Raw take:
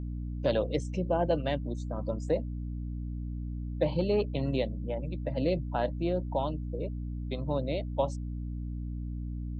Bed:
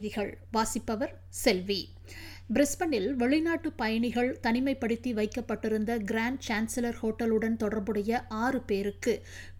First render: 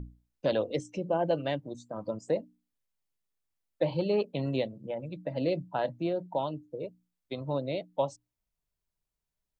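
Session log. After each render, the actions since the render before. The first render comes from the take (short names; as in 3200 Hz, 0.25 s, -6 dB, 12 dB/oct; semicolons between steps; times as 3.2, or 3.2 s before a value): notches 60/120/180/240/300 Hz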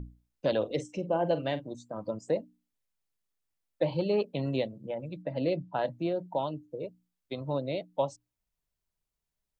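0.57–1.75 doubler 46 ms -13 dB; 5.23–5.81 LPF 5100 Hz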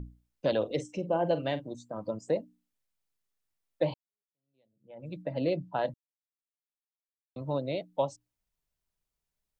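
3.94–5.09 fade in exponential; 5.94–7.36 mute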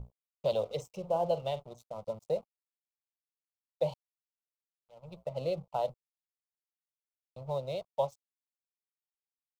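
crossover distortion -49 dBFS; fixed phaser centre 700 Hz, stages 4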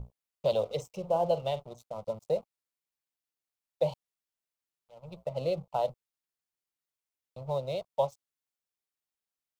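gain +2.5 dB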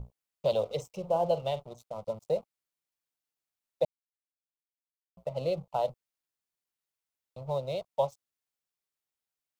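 3.85–5.17 mute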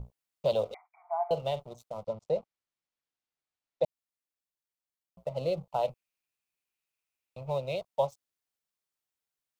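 0.74–1.31 brick-wall FIR band-pass 660–2400 Hz; 2.03–3.84 air absorption 87 m; 5.83–7.76 bell 2500 Hz +12 dB 0.29 oct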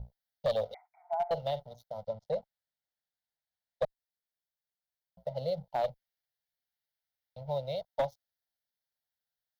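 fixed phaser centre 1700 Hz, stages 8; one-sided clip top -25 dBFS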